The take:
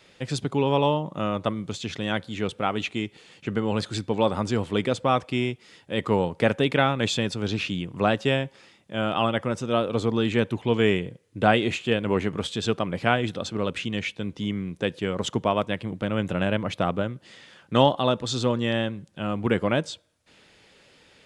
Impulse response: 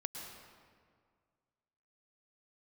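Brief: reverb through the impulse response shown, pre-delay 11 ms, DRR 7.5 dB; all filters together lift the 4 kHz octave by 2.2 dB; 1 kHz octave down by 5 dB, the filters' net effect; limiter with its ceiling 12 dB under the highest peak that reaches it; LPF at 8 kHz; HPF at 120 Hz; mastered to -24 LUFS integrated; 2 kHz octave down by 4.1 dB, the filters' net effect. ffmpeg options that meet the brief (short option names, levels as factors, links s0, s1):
-filter_complex "[0:a]highpass=120,lowpass=8000,equalizer=f=1000:t=o:g=-6,equalizer=f=2000:t=o:g=-5.5,equalizer=f=4000:t=o:g=5.5,alimiter=limit=0.126:level=0:latency=1,asplit=2[s0][s1];[1:a]atrim=start_sample=2205,adelay=11[s2];[s1][s2]afir=irnorm=-1:irlink=0,volume=0.447[s3];[s0][s3]amix=inputs=2:normalize=0,volume=2"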